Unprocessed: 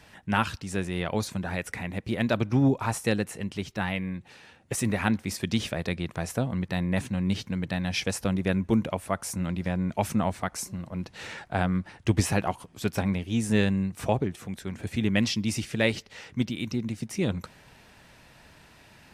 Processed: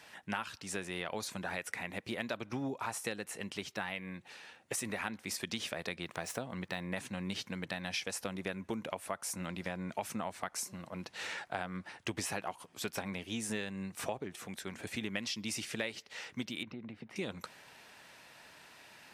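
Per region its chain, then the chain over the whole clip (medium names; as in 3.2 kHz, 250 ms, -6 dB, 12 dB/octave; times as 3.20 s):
6.03–6.90 s: median filter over 3 samples + upward compressor, threshold -37 dBFS
16.63–17.16 s: compression 5:1, threshold -31 dBFS + distance through air 430 m
whole clip: high-pass 600 Hz 6 dB/octave; compression 6:1, threshold -34 dBFS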